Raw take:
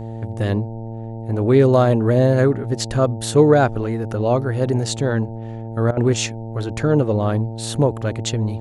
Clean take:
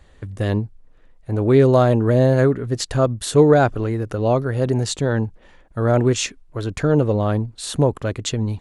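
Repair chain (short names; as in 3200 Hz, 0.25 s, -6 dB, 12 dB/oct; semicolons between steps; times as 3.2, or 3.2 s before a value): de-hum 113.1 Hz, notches 8; interpolate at 5.91, 58 ms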